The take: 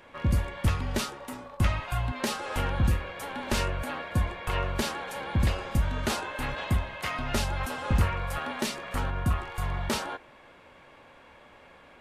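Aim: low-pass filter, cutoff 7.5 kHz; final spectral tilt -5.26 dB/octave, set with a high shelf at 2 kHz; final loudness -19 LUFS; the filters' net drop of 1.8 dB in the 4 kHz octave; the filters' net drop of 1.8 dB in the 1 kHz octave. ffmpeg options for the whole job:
-af "lowpass=7500,equalizer=f=1000:t=o:g=-3,highshelf=f=2000:g=3.5,equalizer=f=4000:t=o:g=-5.5,volume=3.76"

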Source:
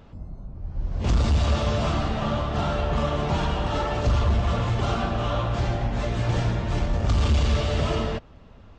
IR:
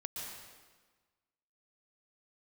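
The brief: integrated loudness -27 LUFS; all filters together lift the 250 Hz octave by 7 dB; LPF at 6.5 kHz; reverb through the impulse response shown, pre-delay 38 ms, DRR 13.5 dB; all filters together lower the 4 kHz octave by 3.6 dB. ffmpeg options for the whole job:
-filter_complex "[0:a]lowpass=6500,equalizer=f=250:t=o:g=9,equalizer=f=4000:t=o:g=-4.5,asplit=2[s0][s1];[1:a]atrim=start_sample=2205,adelay=38[s2];[s1][s2]afir=irnorm=-1:irlink=0,volume=0.211[s3];[s0][s3]amix=inputs=2:normalize=0,volume=0.631"

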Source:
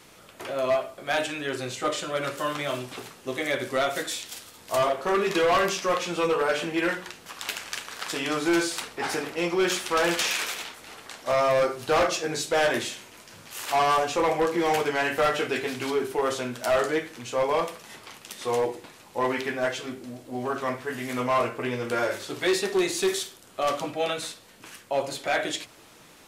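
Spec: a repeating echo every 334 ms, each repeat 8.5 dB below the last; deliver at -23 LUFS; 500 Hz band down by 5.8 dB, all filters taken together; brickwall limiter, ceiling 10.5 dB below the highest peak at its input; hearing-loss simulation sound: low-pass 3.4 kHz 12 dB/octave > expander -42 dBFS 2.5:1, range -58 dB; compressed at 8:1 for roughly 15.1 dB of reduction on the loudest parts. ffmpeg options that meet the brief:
-af "equalizer=f=500:t=o:g=-7.5,acompressor=threshold=0.0126:ratio=8,alimiter=level_in=2.51:limit=0.0631:level=0:latency=1,volume=0.398,lowpass=3400,aecho=1:1:334|668|1002|1336:0.376|0.143|0.0543|0.0206,agate=range=0.00126:threshold=0.00794:ratio=2.5,volume=9.44"

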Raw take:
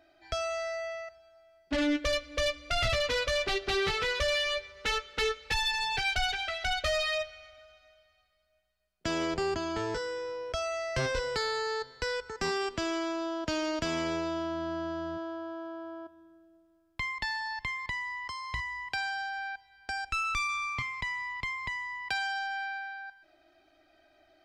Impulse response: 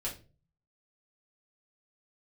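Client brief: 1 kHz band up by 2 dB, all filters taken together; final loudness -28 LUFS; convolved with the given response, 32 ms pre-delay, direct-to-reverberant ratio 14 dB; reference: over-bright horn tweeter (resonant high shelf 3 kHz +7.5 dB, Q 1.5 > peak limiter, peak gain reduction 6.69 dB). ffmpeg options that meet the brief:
-filter_complex "[0:a]equalizer=f=1000:t=o:g=3.5,asplit=2[s0][s1];[1:a]atrim=start_sample=2205,adelay=32[s2];[s1][s2]afir=irnorm=-1:irlink=0,volume=0.158[s3];[s0][s3]amix=inputs=2:normalize=0,highshelf=f=3000:t=q:w=1.5:g=7.5,volume=1.19,alimiter=limit=0.126:level=0:latency=1"

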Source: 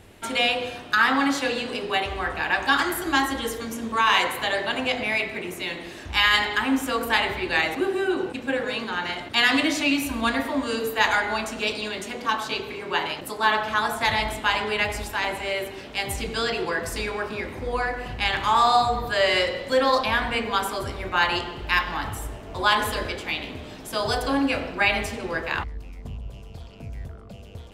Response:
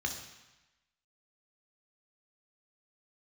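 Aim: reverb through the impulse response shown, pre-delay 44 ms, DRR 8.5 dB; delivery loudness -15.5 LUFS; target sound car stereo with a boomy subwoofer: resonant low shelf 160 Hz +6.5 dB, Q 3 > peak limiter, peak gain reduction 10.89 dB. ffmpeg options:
-filter_complex "[0:a]asplit=2[s0][s1];[1:a]atrim=start_sample=2205,adelay=44[s2];[s1][s2]afir=irnorm=-1:irlink=0,volume=0.237[s3];[s0][s3]amix=inputs=2:normalize=0,lowshelf=f=160:t=q:w=3:g=6.5,volume=3.76,alimiter=limit=0.562:level=0:latency=1"

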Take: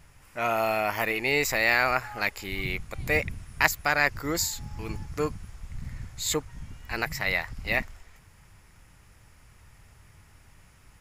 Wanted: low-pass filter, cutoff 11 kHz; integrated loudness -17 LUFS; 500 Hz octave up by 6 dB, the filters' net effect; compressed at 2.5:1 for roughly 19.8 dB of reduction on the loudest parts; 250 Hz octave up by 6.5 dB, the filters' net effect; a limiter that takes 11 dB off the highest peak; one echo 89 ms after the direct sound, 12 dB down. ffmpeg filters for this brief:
-af "lowpass=11000,equalizer=f=250:t=o:g=6.5,equalizer=f=500:t=o:g=6,acompressor=threshold=0.00501:ratio=2.5,alimiter=level_in=2.51:limit=0.0631:level=0:latency=1,volume=0.398,aecho=1:1:89:0.251,volume=28.2"

